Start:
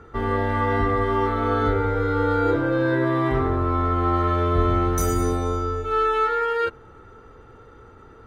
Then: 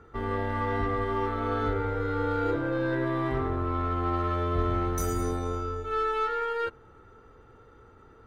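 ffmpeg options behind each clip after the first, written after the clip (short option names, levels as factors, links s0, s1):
-af "aeval=exprs='0.398*(cos(1*acos(clip(val(0)/0.398,-1,1)))-cos(1*PI/2))+0.01*(cos(8*acos(clip(val(0)/0.398,-1,1)))-cos(8*PI/2))':c=same,volume=0.447"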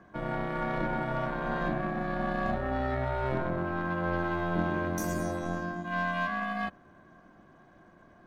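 -af "aeval=exprs='val(0)*sin(2*PI*260*n/s)':c=same,aeval=exprs='0.168*(cos(1*acos(clip(val(0)/0.168,-1,1)))-cos(1*PI/2))+0.00596*(cos(6*acos(clip(val(0)/0.168,-1,1)))-cos(6*PI/2))':c=same"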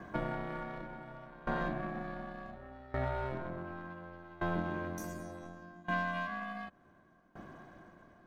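-af "acompressor=threshold=0.0141:ratio=6,aeval=exprs='val(0)*pow(10,-21*if(lt(mod(0.68*n/s,1),2*abs(0.68)/1000),1-mod(0.68*n/s,1)/(2*abs(0.68)/1000),(mod(0.68*n/s,1)-2*abs(0.68)/1000)/(1-2*abs(0.68)/1000))/20)':c=same,volume=2.51"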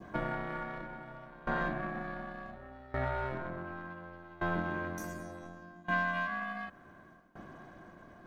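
-af "adynamicequalizer=threshold=0.00355:dfrequency=1600:dqfactor=1.1:tfrequency=1600:tqfactor=1.1:attack=5:release=100:ratio=0.375:range=2.5:mode=boostabove:tftype=bell,areverse,acompressor=mode=upward:threshold=0.00501:ratio=2.5,areverse"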